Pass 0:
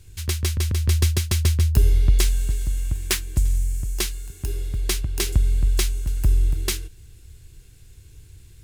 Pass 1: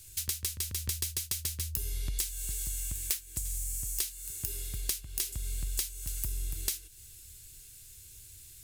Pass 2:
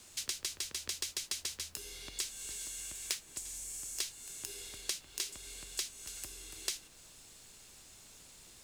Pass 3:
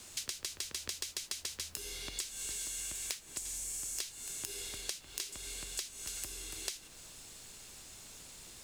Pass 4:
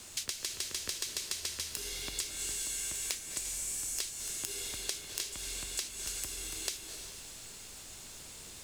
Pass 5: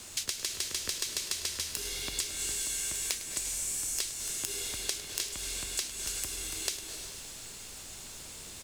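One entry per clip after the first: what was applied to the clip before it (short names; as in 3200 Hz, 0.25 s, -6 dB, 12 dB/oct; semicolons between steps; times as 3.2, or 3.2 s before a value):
pre-emphasis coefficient 0.9; compressor 6:1, threshold -38 dBFS, peak gain reduction 18 dB; gain +7.5 dB
three-band isolator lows -24 dB, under 300 Hz, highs -18 dB, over 7900 Hz; added noise pink -64 dBFS; gain +1 dB
compressor 6:1, threshold -40 dBFS, peak gain reduction 10 dB; gain +4.5 dB
reverb RT60 2.3 s, pre-delay 0.198 s, DRR 6 dB; gain +2.5 dB
echo 0.104 s -14.5 dB; gain +3 dB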